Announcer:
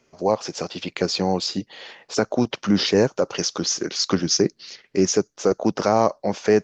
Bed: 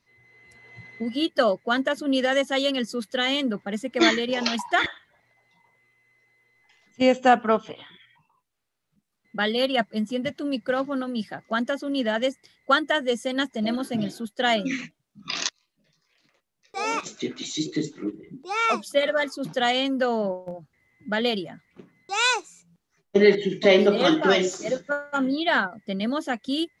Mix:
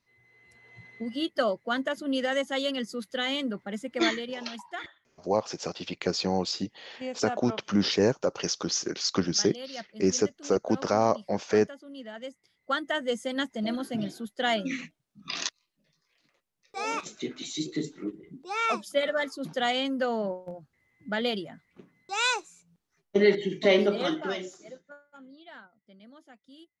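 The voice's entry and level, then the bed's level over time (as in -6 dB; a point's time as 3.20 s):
5.05 s, -5.5 dB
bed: 3.97 s -5.5 dB
4.84 s -17 dB
12.11 s -17 dB
13.06 s -4.5 dB
23.79 s -4.5 dB
25.16 s -26 dB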